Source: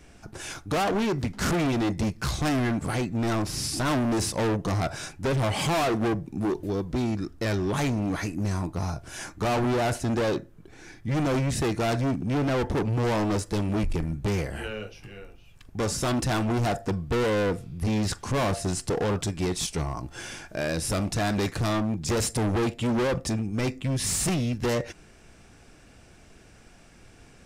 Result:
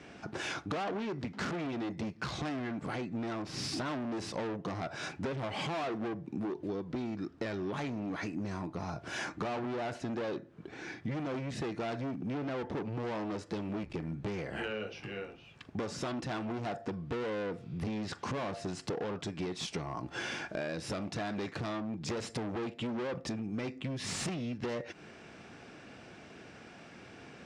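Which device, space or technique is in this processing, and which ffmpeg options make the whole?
AM radio: -af "highpass=160,lowpass=4000,acompressor=threshold=-37dB:ratio=10,asoftclip=type=tanh:threshold=-28.5dB,volume=4.5dB"

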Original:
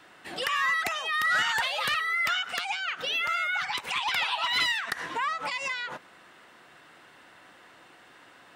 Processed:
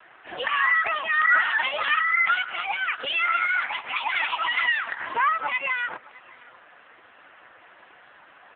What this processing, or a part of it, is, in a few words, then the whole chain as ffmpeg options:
satellite phone: -af "highpass=370,lowpass=3000,aecho=1:1:615:0.0794,volume=8.5dB" -ar 8000 -c:a libopencore_amrnb -b:a 5150

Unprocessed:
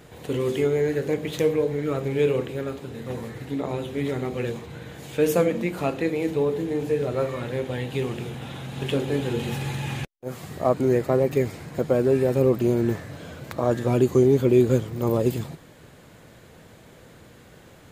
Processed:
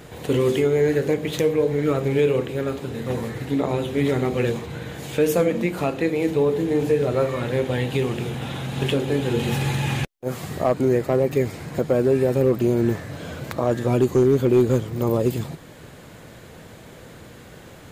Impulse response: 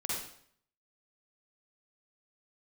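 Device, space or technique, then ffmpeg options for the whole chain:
clipper into limiter: -af "asoftclip=type=hard:threshold=-11dB,alimiter=limit=-16dB:level=0:latency=1:release=452,volume=6dB"

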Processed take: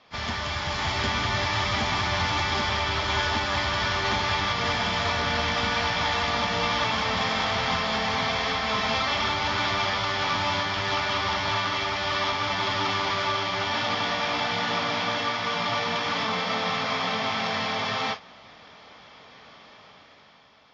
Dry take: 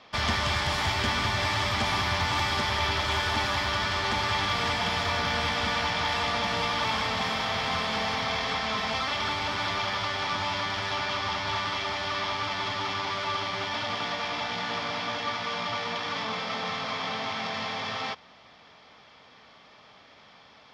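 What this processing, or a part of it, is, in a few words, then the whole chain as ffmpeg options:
low-bitrate web radio: -af "dynaudnorm=framelen=180:gausssize=11:maxgain=8.5dB,alimiter=limit=-11dB:level=0:latency=1:release=474,volume=-4.5dB" -ar 16000 -c:a aac -b:a 24k

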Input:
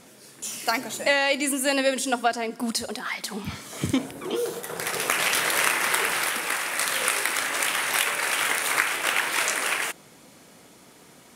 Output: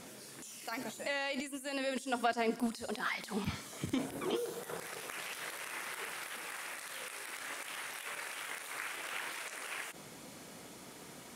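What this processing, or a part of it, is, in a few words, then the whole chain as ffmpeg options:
de-esser from a sidechain: -filter_complex "[0:a]asplit=2[link_01][link_02];[link_02]highpass=frequency=4600:width=0.5412,highpass=frequency=4600:width=1.3066,apad=whole_len=500952[link_03];[link_01][link_03]sidechaincompress=threshold=-49dB:ratio=5:attack=1.5:release=36"

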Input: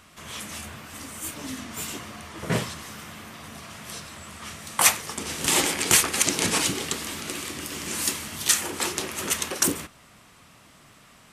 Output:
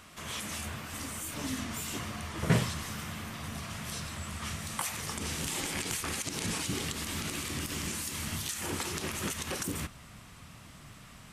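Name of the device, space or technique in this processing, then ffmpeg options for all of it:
de-esser from a sidechain: -filter_complex "[0:a]asubboost=boost=2.5:cutoff=210,asplit=2[link_01][link_02];[link_02]highpass=4100,apad=whole_len=499415[link_03];[link_01][link_03]sidechaincompress=threshold=-37dB:ratio=4:attack=3.7:release=61"

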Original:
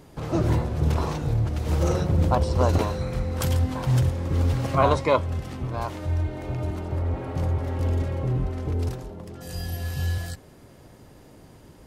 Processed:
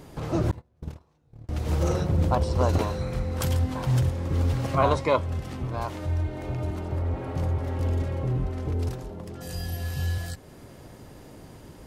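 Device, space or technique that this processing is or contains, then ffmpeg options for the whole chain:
parallel compression: -filter_complex "[0:a]asplit=2[link_01][link_02];[link_02]acompressor=threshold=-41dB:ratio=12,volume=-0.5dB[link_03];[link_01][link_03]amix=inputs=2:normalize=0,asettb=1/sr,asplit=3[link_04][link_05][link_06];[link_04]atrim=end=0.514[link_07];[link_05]atrim=start=0.51:end=1.49,asetpts=PTS-STARTPTS,afade=type=in:duration=0.004:curve=qsin,afade=type=out:start_time=0.976:duration=0.004:curve=qsin,agate=range=-37dB:threshold=-17dB:ratio=16:detection=peak[link_08];[link_06]atrim=start=1.486[link_09];[link_07][link_08]acrossfade=duration=0.004:curve1=hsin:curve2=qsin[link_10];[link_10][link_09]acrossfade=duration=0.004:curve1=qsin:curve2=hsin,volume=-2.5dB"

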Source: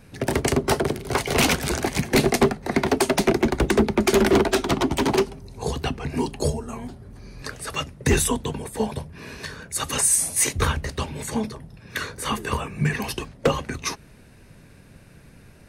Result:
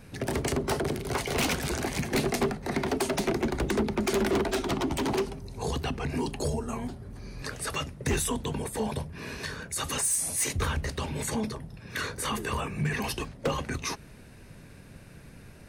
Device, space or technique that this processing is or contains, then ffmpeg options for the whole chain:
clipper into limiter: -af "asoftclip=type=hard:threshold=-15dB,alimiter=limit=-22dB:level=0:latency=1:release=24"

